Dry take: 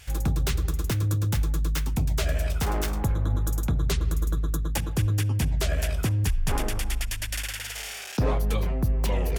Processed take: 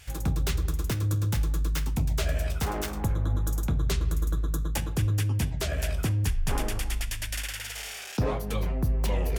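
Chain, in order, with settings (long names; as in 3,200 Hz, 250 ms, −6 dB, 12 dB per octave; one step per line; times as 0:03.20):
flanger 0.36 Hz, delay 9.1 ms, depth 8.4 ms, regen −75%
level +2.5 dB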